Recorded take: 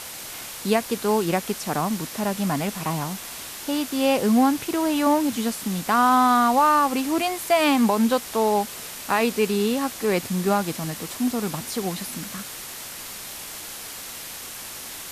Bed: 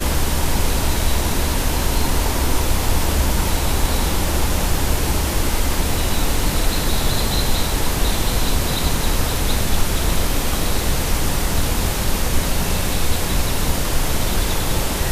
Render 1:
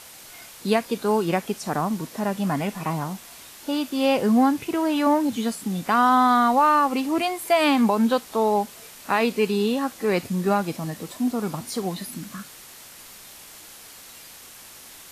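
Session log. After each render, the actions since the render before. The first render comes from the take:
noise reduction from a noise print 8 dB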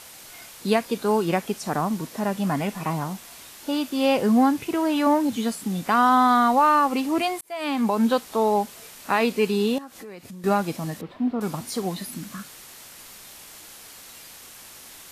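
0:07.41–0:08.05: fade in
0:09.78–0:10.44: downward compressor, threshold −38 dBFS
0:11.01–0:11.41: high-frequency loss of the air 380 metres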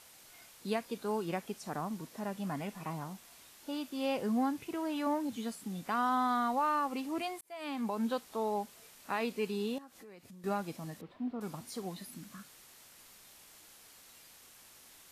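level −13 dB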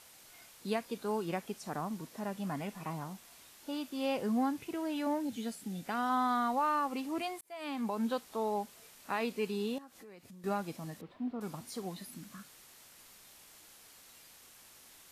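0:04.72–0:06.10: parametric band 1,100 Hz −9 dB 0.32 octaves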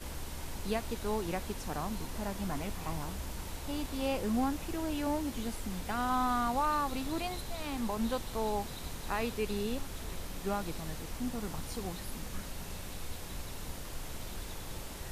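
mix in bed −22.5 dB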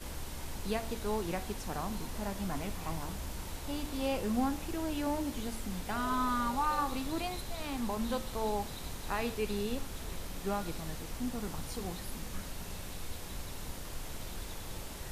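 0:05.97–0:06.82: healed spectral selection 390–810 Hz both
hum removal 74.9 Hz, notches 40

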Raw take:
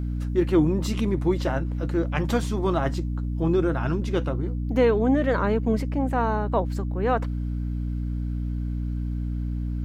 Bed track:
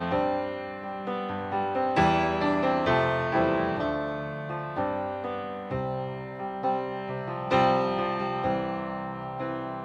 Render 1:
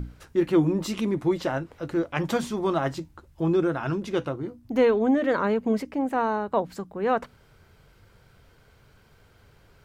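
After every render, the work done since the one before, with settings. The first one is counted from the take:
mains-hum notches 60/120/180/240/300 Hz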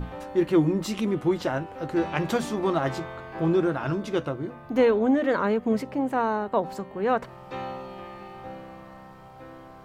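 mix in bed track −12.5 dB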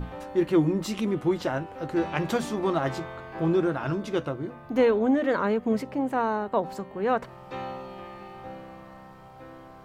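level −1 dB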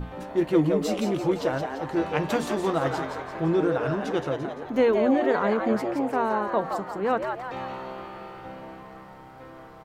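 echo with shifted repeats 171 ms, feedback 49%, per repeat +130 Hz, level −6 dB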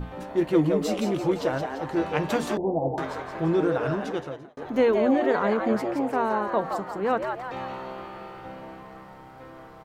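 0:02.57–0:02.98: Butterworth low-pass 880 Hz 72 dB per octave
0:03.96–0:04.57: fade out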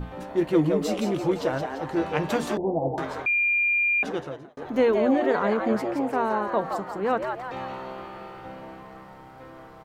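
0:03.26–0:04.03: beep over 2,400 Hz −19.5 dBFS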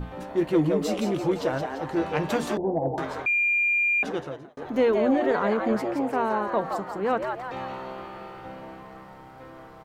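soft clipping −10 dBFS, distortion −27 dB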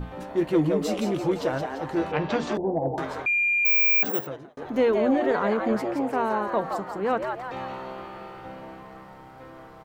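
0:02.11–0:02.53: low-pass filter 3,900 Hz → 7,000 Hz 24 dB per octave
0:03.65–0:04.27: bad sample-rate conversion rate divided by 2×, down filtered, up zero stuff
0:06.17–0:06.65: high-shelf EQ 10,000 Hz +5.5 dB

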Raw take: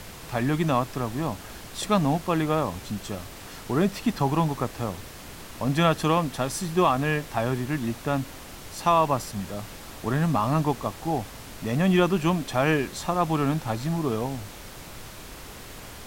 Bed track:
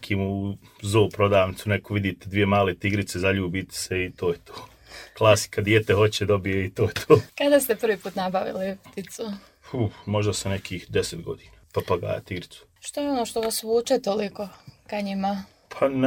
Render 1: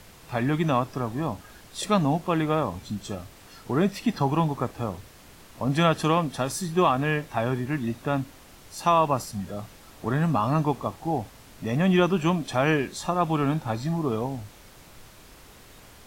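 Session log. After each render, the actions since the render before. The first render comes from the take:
noise reduction from a noise print 8 dB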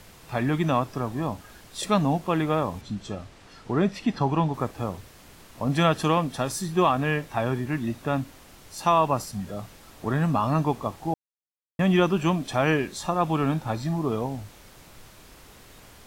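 0:02.81–0:04.54: high-frequency loss of the air 63 metres
0:11.14–0:11.79: silence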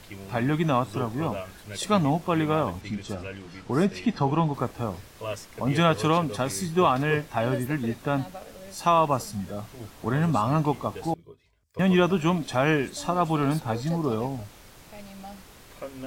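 mix in bed track −16.5 dB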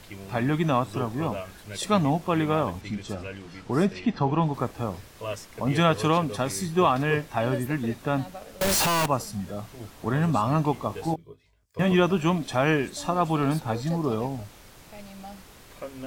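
0:03.93–0:04.42: high-frequency loss of the air 82 metres
0:08.61–0:09.06: sign of each sample alone
0:10.88–0:11.92: double-tracking delay 19 ms −6.5 dB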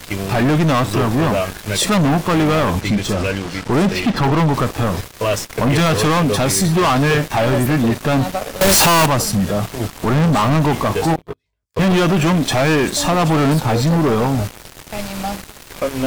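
leveller curve on the samples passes 5
brickwall limiter −11.5 dBFS, peak gain reduction 3 dB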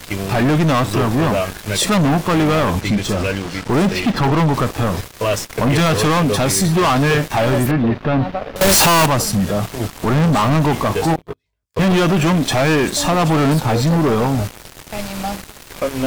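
0:03.11–0:04.20: floating-point word with a short mantissa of 4 bits
0:07.71–0:08.56: high-frequency loss of the air 310 metres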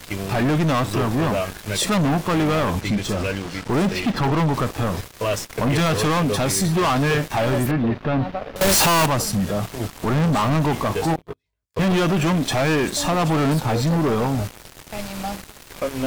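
level −4.5 dB

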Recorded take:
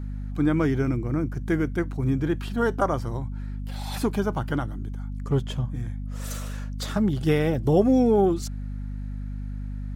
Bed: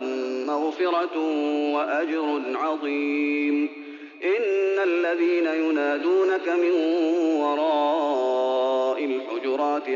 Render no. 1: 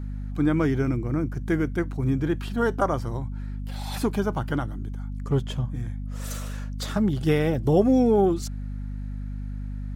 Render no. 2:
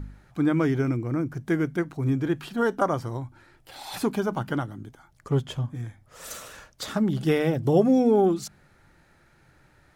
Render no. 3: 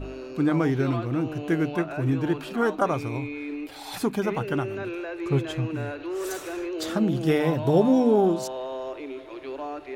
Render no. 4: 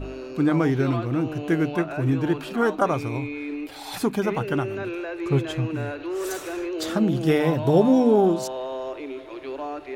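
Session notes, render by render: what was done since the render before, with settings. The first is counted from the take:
no processing that can be heard
hum removal 50 Hz, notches 5
mix in bed −10.5 dB
level +2 dB

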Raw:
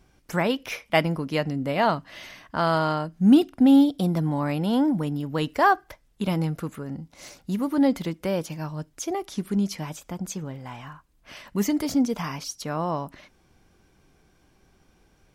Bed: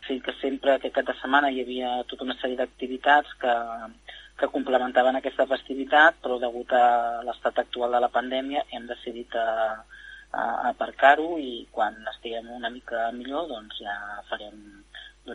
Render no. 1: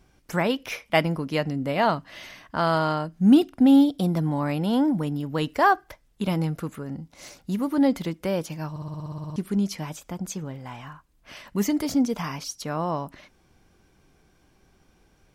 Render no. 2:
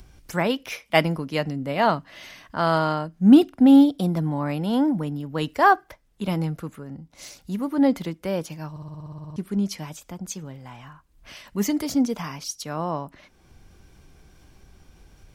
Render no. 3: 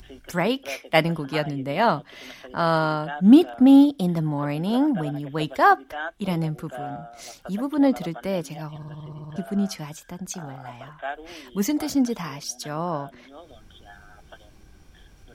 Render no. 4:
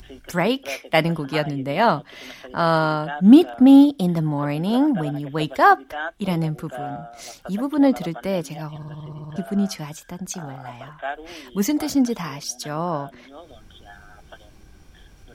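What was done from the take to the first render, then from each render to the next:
0:08.70: stutter in place 0.06 s, 11 plays
upward compression, threshold −32 dBFS; multiband upward and downward expander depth 40%
mix in bed −15.5 dB
level +2.5 dB; brickwall limiter −2 dBFS, peak gain reduction 2.5 dB

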